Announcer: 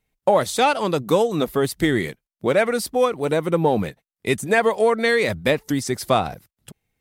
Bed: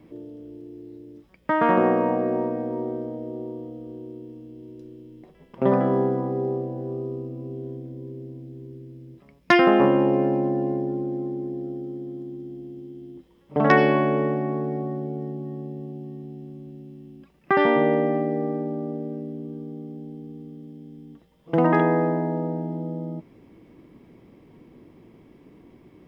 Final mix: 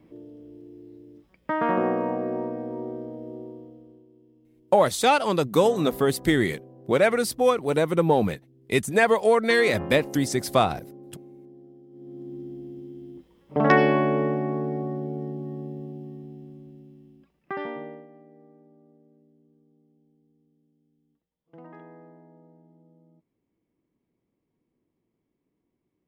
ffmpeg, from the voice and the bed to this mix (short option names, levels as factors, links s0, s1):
-filter_complex "[0:a]adelay=4450,volume=0.841[s0];[1:a]volume=3.98,afade=t=out:st=3.33:d=0.73:silence=0.223872,afade=t=in:st=11.9:d=0.48:silence=0.149624,afade=t=out:st=15.68:d=2.39:silence=0.0473151[s1];[s0][s1]amix=inputs=2:normalize=0"